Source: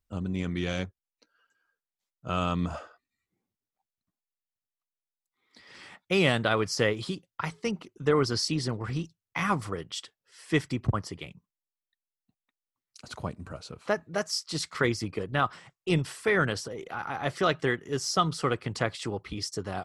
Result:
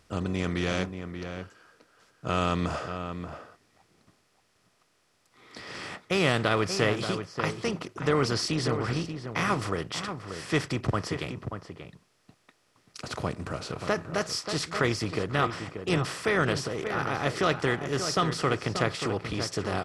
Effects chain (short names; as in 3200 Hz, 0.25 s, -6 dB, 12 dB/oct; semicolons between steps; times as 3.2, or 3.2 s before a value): per-bin compression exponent 0.6; outdoor echo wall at 100 m, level -8 dB; gain -3.5 dB